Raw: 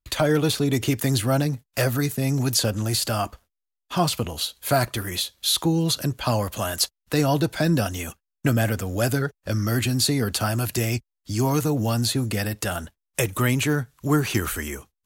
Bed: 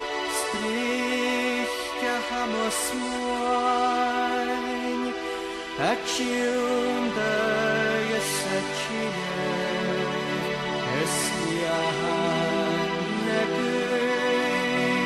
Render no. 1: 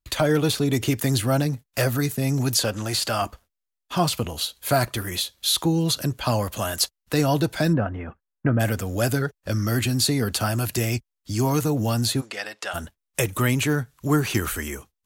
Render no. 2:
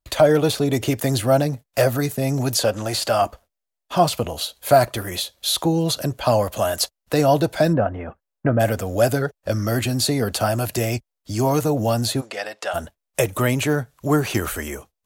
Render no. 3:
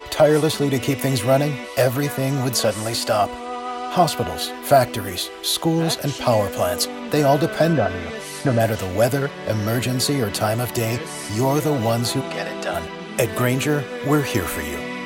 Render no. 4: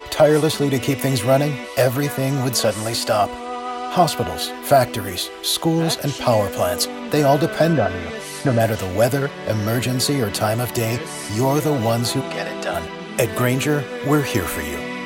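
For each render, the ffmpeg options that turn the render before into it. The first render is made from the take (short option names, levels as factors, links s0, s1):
-filter_complex "[0:a]asettb=1/sr,asplit=3[s0][s1][s2];[s0]atrim=end=2.634[s3];[s1]atrim=start=2.63:end=3.22,asetpts=PTS-STARTPTS,afade=t=in:d=0.004:c=qsin,afade=t=out:st=0.586:d=0.004:c=qsin,asplit=2[s4][s5];[s5]highpass=f=720:p=1,volume=2.51,asoftclip=type=tanh:threshold=0.299[s6];[s4][s6]amix=inputs=2:normalize=0,lowpass=f=4700:p=1,volume=0.501[s7];[s2]atrim=start=3.216[s8];[s3][s7]acrossfade=d=0.004:c1=hsin:c2=qsin[s9];[s9][s8]acrossfade=d=0.004:c1=qsin:c2=hsin,asplit=3[s10][s11][s12];[s10]afade=t=out:st=7.72:d=0.02[s13];[s11]lowpass=f=1800:w=0.5412,lowpass=f=1800:w=1.3066,afade=t=in:st=7.72:d=0.02,afade=t=out:st=8.59:d=0.02[s14];[s12]afade=t=in:st=8.59:d=0.02[s15];[s13][s14][s15]amix=inputs=3:normalize=0,asplit=3[s16][s17][s18];[s16]afade=t=out:st=12.2:d=0.02[s19];[s17]highpass=650,lowpass=5300,afade=t=in:st=12.2:d=0.02,afade=t=out:st=12.73:d=0.02[s20];[s18]afade=t=in:st=12.73:d=0.02[s21];[s19][s20][s21]amix=inputs=3:normalize=0"
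-af "equalizer=f=620:w=1.5:g=9.5"
-filter_complex "[1:a]volume=0.531[s0];[0:a][s0]amix=inputs=2:normalize=0"
-af "volume=1.12,alimiter=limit=0.708:level=0:latency=1"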